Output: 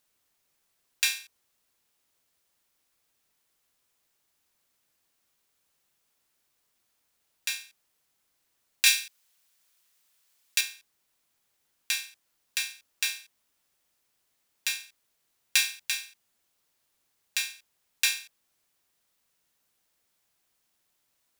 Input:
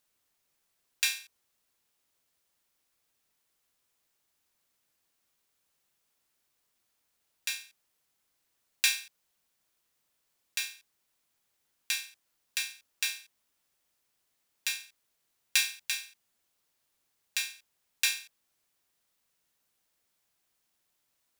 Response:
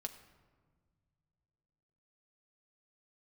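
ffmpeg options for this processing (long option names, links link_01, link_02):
-filter_complex "[0:a]asettb=1/sr,asplit=3[link_01][link_02][link_03];[link_01]atrim=end=8.864[link_04];[link_02]atrim=start=8.86:end=10.61,asetpts=PTS-STARTPTS,afade=type=in:duration=0.004:curve=qsin,afade=type=out:start_time=1.746:duration=0.004:curve=qsin,tiltshelf=frequency=970:gain=-6[link_05];[link_03]atrim=start=10.606[link_06];[link_04][link_05]acrossfade=duration=0.004:curve1=hsin:curve2=qsin[link_07];[link_07][link_06]acrossfade=duration=0.004:curve1=qsin:curve2=hsin,volume=2.5dB"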